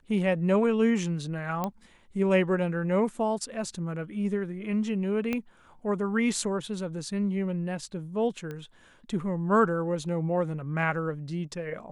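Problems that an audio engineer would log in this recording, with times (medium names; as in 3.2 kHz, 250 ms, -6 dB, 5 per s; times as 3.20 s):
1.64 s: pop -16 dBFS
5.33 s: pop -16 dBFS
8.51 s: pop -25 dBFS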